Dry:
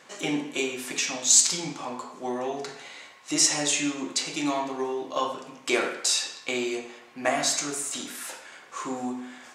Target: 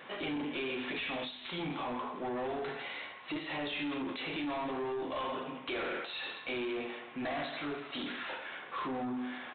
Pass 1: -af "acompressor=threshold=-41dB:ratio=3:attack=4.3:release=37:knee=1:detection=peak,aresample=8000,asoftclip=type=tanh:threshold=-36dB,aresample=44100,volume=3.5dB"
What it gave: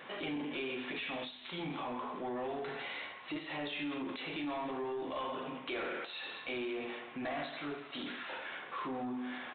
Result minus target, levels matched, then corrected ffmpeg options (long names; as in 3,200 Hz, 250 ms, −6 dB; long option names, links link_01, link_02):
downward compressor: peak gain reduction +4.5 dB
-af "acompressor=threshold=-34.5dB:ratio=3:attack=4.3:release=37:knee=1:detection=peak,aresample=8000,asoftclip=type=tanh:threshold=-36dB,aresample=44100,volume=3.5dB"